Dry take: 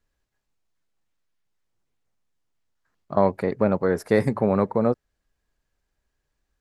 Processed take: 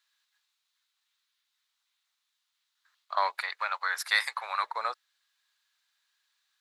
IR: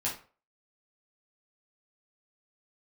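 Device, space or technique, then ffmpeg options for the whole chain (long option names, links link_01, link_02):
headphones lying on a table: -filter_complex "[0:a]highpass=frequency=1100:width=0.5412,highpass=frequency=1100:width=1.3066,equalizer=frequency=3800:width_type=o:width=0.59:gain=11,asettb=1/sr,asplit=3[link_01][link_02][link_03];[link_01]atrim=end=3.404[link_04];[link_02]atrim=start=3.4:end=4.64,asetpts=PTS-STARTPTS,afade=type=in:duration=0.004:curve=qsin,afade=type=out:start_time=1.236:duration=0.004:curve=qsin,highpass=790[link_05];[link_03]atrim=start=4.636[link_06];[link_04][link_05]acrossfade=duration=0.004:curve1=hsin:curve2=qsin[link_07];[link_07][link_06]acrossfade=duration=0.004:curve1=qsin:curve2=hsin,volume=5dB"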